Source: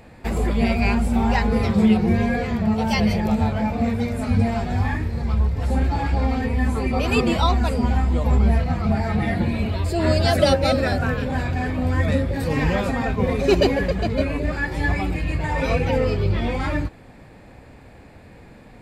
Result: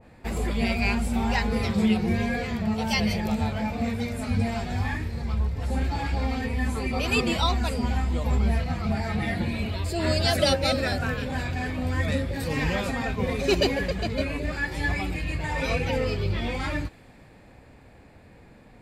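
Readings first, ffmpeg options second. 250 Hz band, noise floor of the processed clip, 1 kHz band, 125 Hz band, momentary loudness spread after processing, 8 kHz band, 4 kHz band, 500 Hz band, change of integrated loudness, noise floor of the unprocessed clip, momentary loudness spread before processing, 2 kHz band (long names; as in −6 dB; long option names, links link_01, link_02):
−6.0 dB, −51 dBFS, −5.5 dB, −6.0 dB, 6 LU, +1.0 dB, +0.5 dB, −6.0 dB, −5.0 dB, −46 dBFS, 6 LU, −2.0 dB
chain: -af "adynamicequalizer=threshold=0.0126:dfrequency=1800:dqfactor=0.7:tfrequency=1800:tqfactor=0.7:attack=5:release=100:ratio=0.375:range=3.5:mode=boostabove:tftype=highshelf,volume=-6dB"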